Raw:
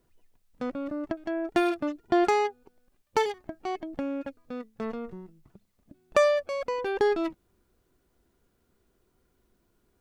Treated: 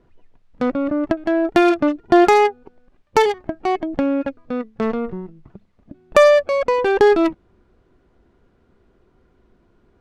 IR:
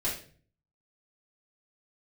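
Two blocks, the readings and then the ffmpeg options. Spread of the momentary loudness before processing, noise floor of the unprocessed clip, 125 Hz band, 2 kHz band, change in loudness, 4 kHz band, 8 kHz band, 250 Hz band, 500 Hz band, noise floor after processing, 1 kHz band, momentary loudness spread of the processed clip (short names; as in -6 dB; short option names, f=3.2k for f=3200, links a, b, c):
14 LU, -72 dBFS, +12.5 dB, +11.0 dB, +11.0 dB, +9.5 dB, +8.0 dB, +12.0 dB, +11.5 dB, -60 dBFS, +11.0 dB, 12 LU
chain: -filter_complex "[0:a]asplit=2[a][b];[b]alimiter=limit=-19dB:level=0:latency=1,volume=0.5dB[c];[a][c]amix=inputs=2:normalize=0,adynamicsmooth=sensitivity=2.5:basefreq=2.9k,volume=6.5dB"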